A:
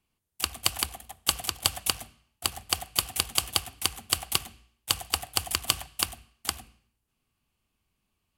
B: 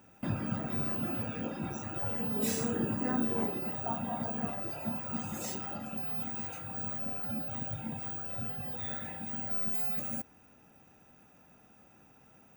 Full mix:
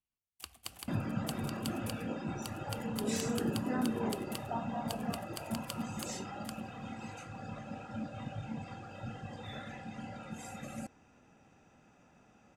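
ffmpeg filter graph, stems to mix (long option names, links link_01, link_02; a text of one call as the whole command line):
ffmpeg -i stem1.wav -i stem2.wav -filter_complex "[0:a]volume=-18.5dB[link_01];[1:a]lowpass=frequency=8100:width=0.5412,lowpass=frequency=8100:width=1.3066,adelay=650,volume=-1dB[link_02];[link_01][link_02]amix=inputs=2:normalize=0" out.wav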